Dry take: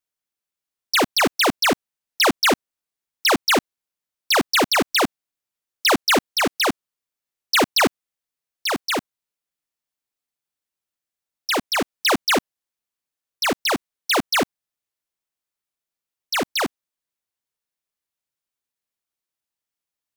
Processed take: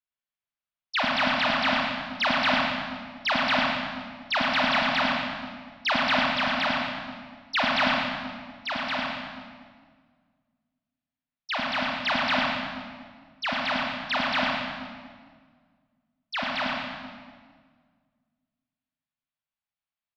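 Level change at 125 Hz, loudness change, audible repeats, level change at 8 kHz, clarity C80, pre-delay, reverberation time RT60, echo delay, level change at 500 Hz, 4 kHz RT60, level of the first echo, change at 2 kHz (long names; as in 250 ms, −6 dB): −2.5 dB, −5.5 dB, 1, −23.0 dB, −0.5 dB, 22 ms, 1.7 s, 112 ms, −7.5 dB, 1.4 s, −4.5 dB, −2.0 dB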